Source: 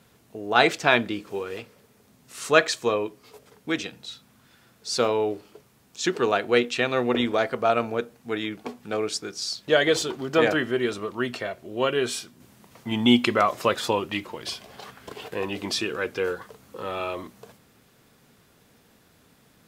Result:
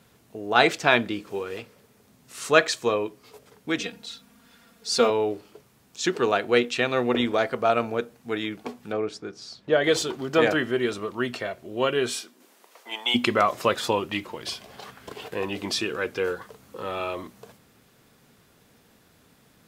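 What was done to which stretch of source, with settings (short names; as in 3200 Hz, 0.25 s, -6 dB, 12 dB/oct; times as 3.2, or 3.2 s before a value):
3.79–5.1 comb 4.3 ms, depth 77%
8.92–9.84 LPF 1300 Hz 6 dB/oct
12.14–13.14 HPF 210 Hz -> 620 Hz 24 dB/oct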